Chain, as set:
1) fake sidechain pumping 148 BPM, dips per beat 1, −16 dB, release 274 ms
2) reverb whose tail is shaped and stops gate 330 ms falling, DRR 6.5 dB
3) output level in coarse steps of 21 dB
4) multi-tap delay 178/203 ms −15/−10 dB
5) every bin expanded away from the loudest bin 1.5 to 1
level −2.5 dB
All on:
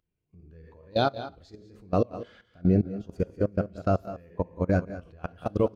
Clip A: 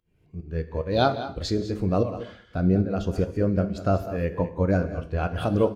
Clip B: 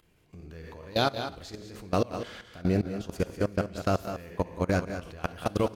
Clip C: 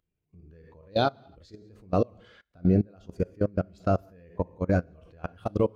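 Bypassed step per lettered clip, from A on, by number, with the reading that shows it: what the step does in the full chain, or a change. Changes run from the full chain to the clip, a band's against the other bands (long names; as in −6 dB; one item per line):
3, change in momentary loudness spread −6 LU
5, 4 kHz band +6.5 dB
4, change in momentary loudness spread −4 LU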